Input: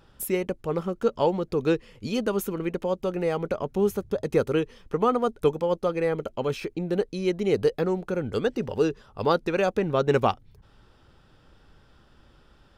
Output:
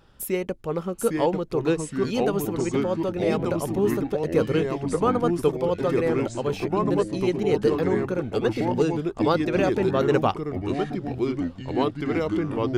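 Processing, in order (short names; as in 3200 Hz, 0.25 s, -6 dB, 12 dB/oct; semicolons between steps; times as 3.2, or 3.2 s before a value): echoes that change speed 0.751 s, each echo -3 st, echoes 3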